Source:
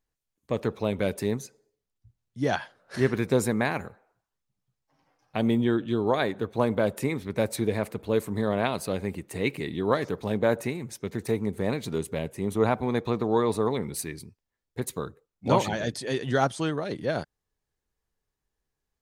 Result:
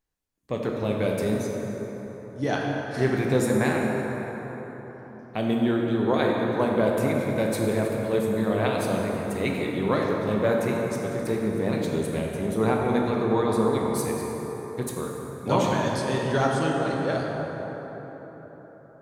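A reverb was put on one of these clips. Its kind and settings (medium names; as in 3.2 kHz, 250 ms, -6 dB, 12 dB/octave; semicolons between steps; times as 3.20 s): plate-style reverb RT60 4.5 s, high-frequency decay 0.45×, DRR -1.5 dB; trim -1.5 dB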